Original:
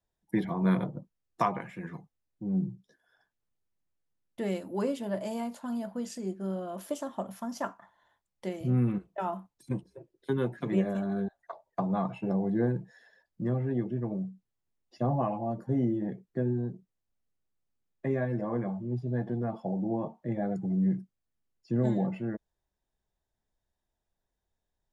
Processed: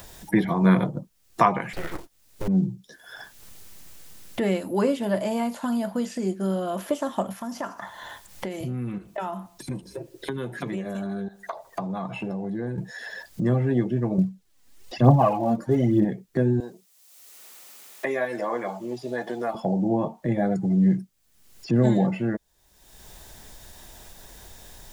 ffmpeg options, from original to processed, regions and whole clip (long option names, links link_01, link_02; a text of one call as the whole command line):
ffmpeg -i in.wav -filter_complex "[0:a]asettb=1/sr,asplit=3[link_01][link_02][link_03];[link_01]atrim=end=1.734[link_04];[link_02]atrim=start=1.73:end=2.48,asetpts=PTS-STARTPTS,afade=type=in:duration=0.004:curve=qsin,afade=type=out:start_time=0.746:duration=0.004:curve=qsin,aeval=exprs='abs(val(0))':channel_layout=same,acrusher=bits=5:mode=log:mix=0:aa=0.000001[link_05];[link_03]atrim=start=2.476[link_06];[link_04][link_05]acrossfade=duration=0.004:curve1=hsin:curve2=qsin[link_07];[link_07][link_06]acrossfade=duration=0.004:curve1=qsin:curve2=hsin,asettb=1/sr,asplit=3[link_08][link_09][link_10];[link_08]atrim=end=7.334[link_11];[link_09]atrim=start=7.33:end=12.78,asetpts=PTS-STARTPTS,afade=type=in:duration=0.004:curve=qsin,afade=type=out:start_time=5.446:duration=0.004:curve=qsin,acompressor=threshold=-52dB:ratio=2:attack=3.2:release=140:knee=1:detection=peak,aecho=1:1:76|152|228:0.0631|0.0278|0.0122,atrim=end_sample=240345[link_12];[link_10]atrim=start=12.776[link_13];[link_11][link_12]acrossfade=duration=0.004:curve1=hsin:curve2=qsin[link_14];[link_14][link_13]acrossfade=duration=0.004:curve1=qsin:curve2=hsin,asettb=1/sr,asplit=3[link_15][link_16][link_17];[link_15]atrim=end=14.184[link_18];[link_16]atrim=start=14.18:end=16.05,asetpts=PTS-STARTPTS,afade=type=in:duration=0.004:curve=qsin,afade=type=out:start_time=1.866:duration=0.004:curve=qsin,highshelf=frequency=8900:gain=-6,aphaser=in_gain=1:out_gain=1:delay=4.3:decay=0.59:speed=1.1:type=triangular[link_19];[link_17]atrim=start=16.046[link_20];[link_18][link_19]acrossfade=duration=0.004:curve1=hsin:curve2=qsin[link_21];[link_21][link_20]acrossfade=duration=0.004:curve1=qsin:curve2=hsin,asettb=1/sr,asplit=3[link_22][link_23][link_24];[link_22]atrim=end=16.604[link_25];[link_23]atrim=start=16.6:end=19.55,asetpts=PTS-STARTPTS,afade=type=in:duration=0.004:curve=qsin,afade=type=out:start_time=2.946:duration=0.004:curve=qsin,highpass=520,highshelf=frequency=3500:gain=7.5,bandreject=frequency=1600:width=19[link_26];[link_24]atrim=start=19.546[link_27];[link_25][link_26]acrossfade=duration=0.004:curve1=hsin:curve2=qsin[link_28];[link_28][link_27]acrossfade=duration=0.004:curve1=qsin:curve2=hsin,acompressor=mode=upward:threshold=-31dB:ratio=2.5,highshelf=frequency=2500:gain=11,acrossover=split=2600[link_29][link_30];[link_30]acompressor=threshold=-52dB:ratio=4:attack=1:release=60[link_31];[link_29][link_31]amix=inputs=2:normalize=0,volume=7.5dB" out.wav